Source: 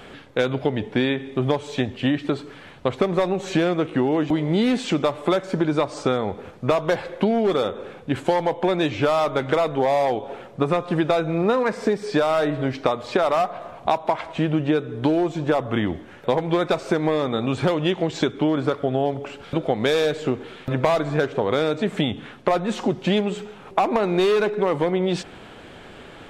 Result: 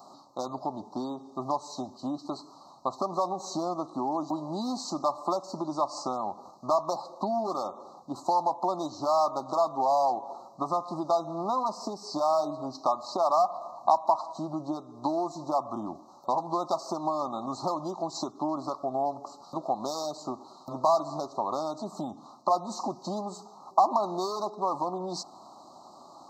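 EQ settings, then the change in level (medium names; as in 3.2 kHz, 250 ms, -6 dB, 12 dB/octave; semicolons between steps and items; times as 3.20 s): high-pass 410 Hz 12 dB/octave; Chebyshev band-stop 1.2–4 kHz, order 4; static phaser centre 2.3 kHz, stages 8; +1.5 dB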